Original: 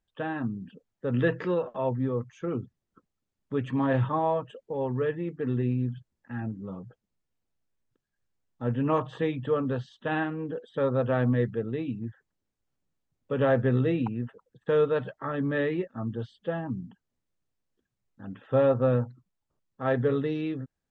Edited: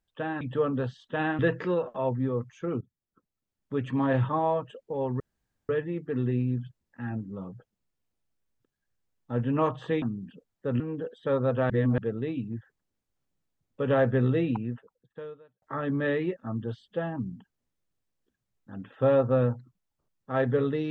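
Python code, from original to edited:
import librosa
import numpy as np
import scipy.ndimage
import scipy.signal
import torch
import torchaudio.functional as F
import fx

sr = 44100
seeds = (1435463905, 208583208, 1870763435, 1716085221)

y = fx.edit(x, sr, fx.swap(start_s=0.41, length_s=0.78, other_s=9.33, other_length_s=0.98),
    fx.fade_in_from(start_s=2.61, length_s=1.06, floor_db=-17.0),
    fx.insert_room_tone(at_s=5.0, length_s=0.49),
    fx.reverse_span(start_s=11.21, length_s=0.28),
    fx.fade_out_span(start_s=14.15, length_s=0.98, curve='qua'), tone=tone)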